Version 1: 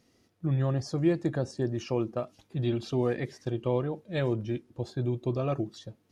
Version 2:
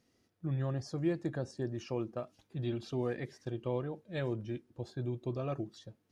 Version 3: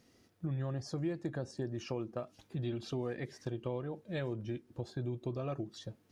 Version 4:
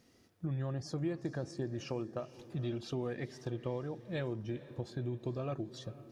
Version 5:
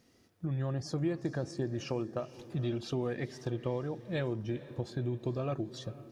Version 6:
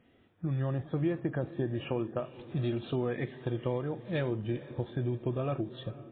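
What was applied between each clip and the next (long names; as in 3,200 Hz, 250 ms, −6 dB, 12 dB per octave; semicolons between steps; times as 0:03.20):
parametric band 1,600 Hz +2.5 dB 0.31 octaves; level −7 dB
downward compressor 2.5 to 1, threshold −45 dBFS, peak gain reduction 12.5 dB; level +7 dB
feedback delay with all-pass diffusion 458 ms, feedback 46%, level −16 dB
automatic gain control gain up to 3.5 dB
level +2.5 dB; MP3 16 kbit/s 8,000 Hz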